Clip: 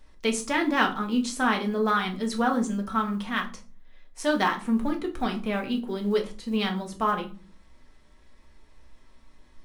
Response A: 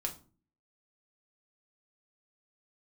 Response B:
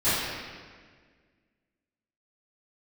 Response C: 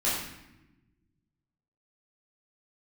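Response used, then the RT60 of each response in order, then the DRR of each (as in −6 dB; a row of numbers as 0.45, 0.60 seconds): A; non-exponential decay, 1.7 s, non-exponential decay; 1.5, −18.5, −9.0 decibels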